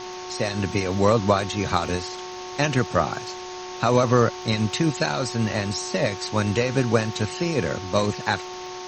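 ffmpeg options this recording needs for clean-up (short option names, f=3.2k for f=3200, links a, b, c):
-af "adeclick=t=4,bandreject=f=366:t=h:w=4,bandreject=f=732:t=h:w=4,bandreject=f=1.098k:t=h:w=4,bandreject=f=900:w=30,afftdn=nr=30:nf=-35"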